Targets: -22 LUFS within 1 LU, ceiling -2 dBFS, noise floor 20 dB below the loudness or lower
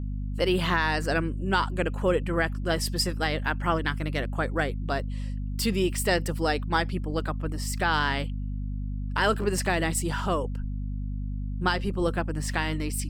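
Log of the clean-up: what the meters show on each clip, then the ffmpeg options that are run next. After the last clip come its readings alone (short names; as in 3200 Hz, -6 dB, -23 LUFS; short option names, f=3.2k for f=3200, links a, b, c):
hum 50 Hz; harmonics up to 250 Hz; hum level -29 dBFS; loudness -28.0 LUFS; peak -11.0 dBFS; loudness target -22.0 LUFS
-> -af "bandreject=f=50:t=h:w=4,bandreject=f=100:t=h:w=4,bandreject=f=150:t=h:w=4,bandreject=f=200:t=h:w=4,bandreject=f=250:t=h:w=4"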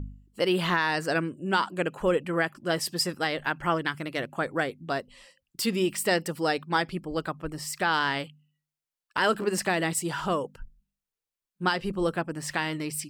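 hum none; loudness -28.0 LUFS; peak -12.0 dBFS; loudness target -22.0 LUFS
-> -af "volume=6dB"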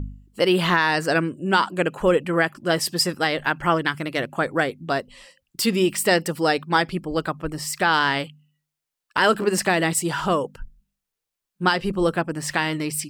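loudness -22.0 LUFS; peak -6.0 dBFS; noise floor -85 dBFS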